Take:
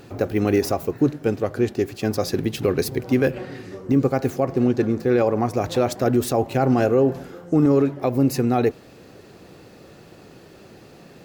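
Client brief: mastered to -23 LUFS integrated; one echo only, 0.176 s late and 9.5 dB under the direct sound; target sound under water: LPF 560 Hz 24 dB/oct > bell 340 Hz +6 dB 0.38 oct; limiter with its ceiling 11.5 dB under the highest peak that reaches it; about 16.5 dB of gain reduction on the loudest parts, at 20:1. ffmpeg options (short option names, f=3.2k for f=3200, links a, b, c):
-af "acompressor=threshold=-30dB:ratio=20,alimiter=level_in=6.5dB:limit=-24dB:level=0:latency=1,volume=-6.5dB,lowpass=f=560:w=0.5412,lowpass=f=560:w=1.3066,equalizer=f=340:t=o:w=0.38:g=6,aecho=1:1:176:0.335,volume=16.5dB"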